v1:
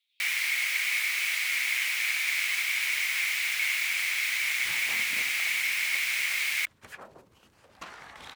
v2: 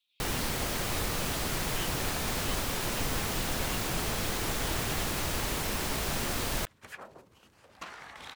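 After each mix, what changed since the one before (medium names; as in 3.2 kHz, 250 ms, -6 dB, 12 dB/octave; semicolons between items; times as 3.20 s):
first sound: remove resonant high-pass 2.2 kHz, resonance Q 8.4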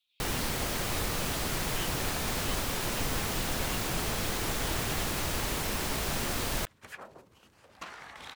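no change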